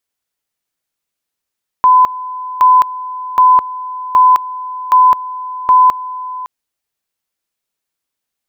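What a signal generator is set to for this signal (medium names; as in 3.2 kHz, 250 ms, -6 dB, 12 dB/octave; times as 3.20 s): two-level tone 1.01 kHz -4 dBFS, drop 17 dB, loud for 0.21 s, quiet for 0.56 s, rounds 6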